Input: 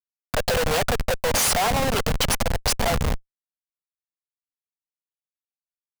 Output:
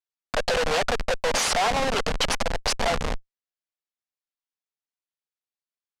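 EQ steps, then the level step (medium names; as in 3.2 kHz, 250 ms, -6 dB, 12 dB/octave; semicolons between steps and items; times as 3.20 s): low-pass 6.5 kHz 12 dB/octave; peaking EQ 92 Hz -12 dB 2 oct; 0.0 dB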